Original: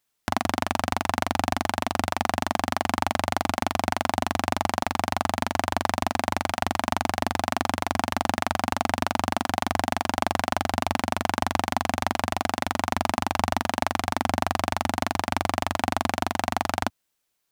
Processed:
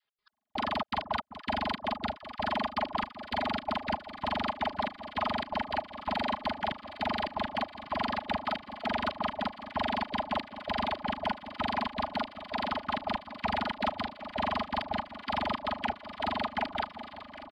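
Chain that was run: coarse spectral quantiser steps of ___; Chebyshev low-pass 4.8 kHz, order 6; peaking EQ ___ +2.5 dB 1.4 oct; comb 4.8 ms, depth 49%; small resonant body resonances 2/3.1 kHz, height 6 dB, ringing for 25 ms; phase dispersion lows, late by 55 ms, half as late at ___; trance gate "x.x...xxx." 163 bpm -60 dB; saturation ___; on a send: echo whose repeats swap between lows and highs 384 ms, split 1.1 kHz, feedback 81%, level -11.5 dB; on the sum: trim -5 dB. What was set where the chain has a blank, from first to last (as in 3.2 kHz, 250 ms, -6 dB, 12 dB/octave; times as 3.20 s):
15 dB, 1.4 kHz, 580 Hz, -16 dBFS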